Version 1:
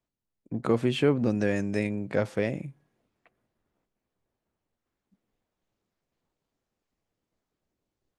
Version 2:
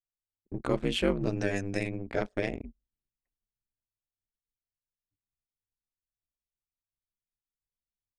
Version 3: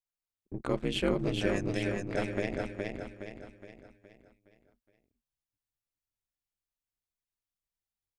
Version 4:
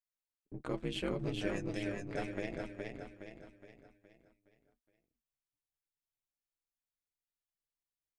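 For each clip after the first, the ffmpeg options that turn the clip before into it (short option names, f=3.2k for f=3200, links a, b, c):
-af "aeval=exprs='val(0)*sin(2*PI*96*n/s)':c=same,anlmdn=0.1,highshelf=f=2.3k:g=8.5,volume=-1.5dB"
-af "aecho=1:1:417|834|1251|1668|2085|2502:0.668|0.301|0.135|0.0609|0.0274|0.0123,volume=-2.5dB"
-af "flanger=delay=6:depth=1.1:regen=53:speed=1.2:shape=sinusoidal,volume=-2.5dB"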